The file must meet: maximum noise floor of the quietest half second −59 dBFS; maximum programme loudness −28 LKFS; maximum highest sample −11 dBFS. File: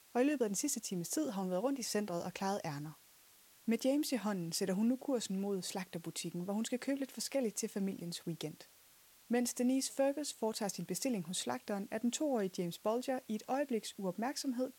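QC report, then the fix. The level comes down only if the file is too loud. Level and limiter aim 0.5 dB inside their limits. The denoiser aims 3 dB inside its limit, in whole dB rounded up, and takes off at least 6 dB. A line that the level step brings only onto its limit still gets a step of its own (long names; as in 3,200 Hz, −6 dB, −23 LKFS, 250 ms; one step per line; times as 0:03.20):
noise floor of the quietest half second −64 dBFS: in spec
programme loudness −37.5 LKFS: in spec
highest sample −22.0 dBFS: in spec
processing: no processing needed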